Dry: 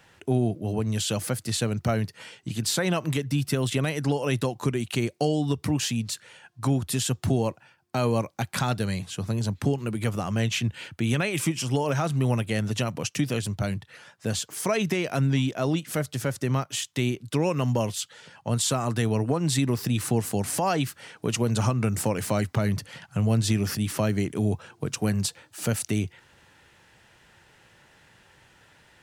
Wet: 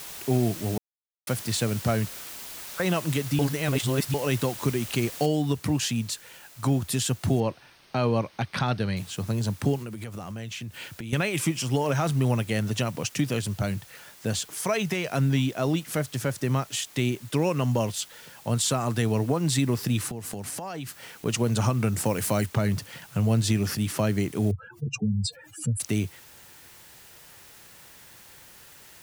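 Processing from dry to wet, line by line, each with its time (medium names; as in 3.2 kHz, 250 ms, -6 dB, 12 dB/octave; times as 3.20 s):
0.78–1.27 s: mute
2.08–2.80 s: ladder band-pass 1.3 kHz, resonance 75%
3.39–4.14 s: reverse
5.26 s: noise floor step -40 dB -51 dB
7.40–8.97 s: Savitzky-Golay filter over 15 samples
9.82–11.13 s: compression, threshold -33 dBFS
11.81–12.29 s: transient shaper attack +2 dB, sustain +7 dB
14.56–15.12 s: peaking EQ 290 Hz -10.5 dB 0.54 oct
20.07–21.26 s: compression 16:1, threshold -30 dBFS
22.05–22.46 s: treble shelf 9.3 kHz +9.5 dB
24.51–25.80 s: spectral contrast enhancement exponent 3.7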